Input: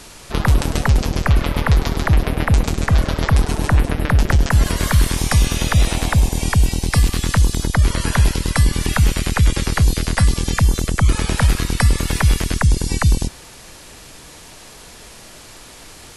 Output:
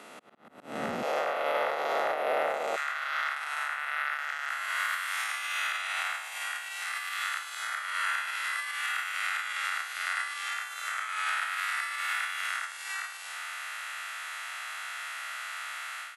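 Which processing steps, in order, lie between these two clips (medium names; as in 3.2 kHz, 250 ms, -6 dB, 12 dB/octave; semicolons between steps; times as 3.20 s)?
spectral blur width 174 ms; peaking EQ 5.1 kHz -10 dB 0.96 oct; comb 1.5 ms, depth 41%; compression 8:1, threshold -21 dBFS, peak gain reduction 10 dB; slow attack 615 ms; peak limiter -20 dBFS, peak gain reduction 5.5 dB; level rider gain up to 11.5 dB; slow attack 329 ms; overdrive pedal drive 12 dB, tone 2.1 kHz, clips at -8.5 dBFS; ladder high-pass 200 Hz, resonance 40%, from 1.02 s 430 Hz, from 2.75 s 1.2 kHz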